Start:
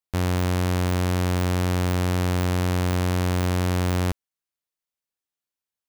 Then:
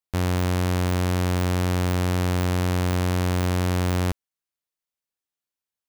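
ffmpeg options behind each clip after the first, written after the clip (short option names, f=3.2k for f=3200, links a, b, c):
-af anull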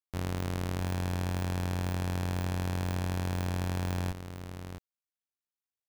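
-filter_complex "[0:a]tremolo=f=52:d=0.75,asplit=2[a][b];[b]aecho=0:1:664:0.355[c];[a][c]amix=inputs=2:normalize=0,volume=-7dB"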